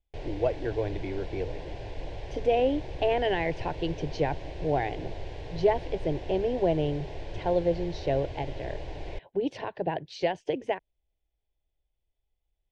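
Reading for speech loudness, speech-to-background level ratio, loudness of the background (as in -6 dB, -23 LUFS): -30.0 LUFS, 10.5 dB, -40.5 LUFS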